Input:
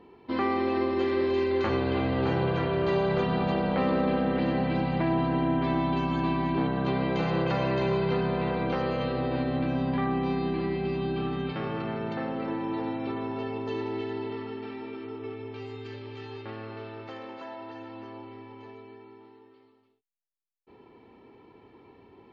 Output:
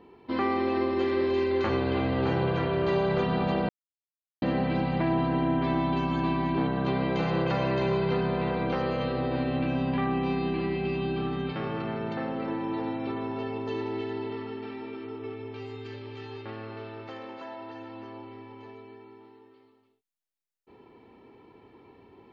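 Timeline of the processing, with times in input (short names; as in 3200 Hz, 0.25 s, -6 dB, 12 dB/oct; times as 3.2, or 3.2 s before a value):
3.69–4.42 mute
9.42–11.16 bell 2700 Hz +6.5 dB 0.3 oct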